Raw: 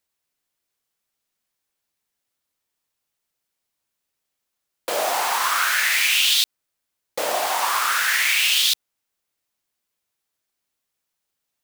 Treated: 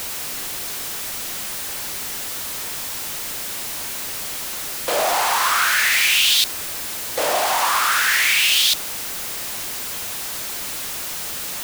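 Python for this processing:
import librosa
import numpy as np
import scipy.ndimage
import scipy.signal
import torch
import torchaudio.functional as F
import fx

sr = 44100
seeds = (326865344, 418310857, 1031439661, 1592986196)

y = x + 0.5 * 10.0 ** (-22.0 / 20.0) * np.sign(x)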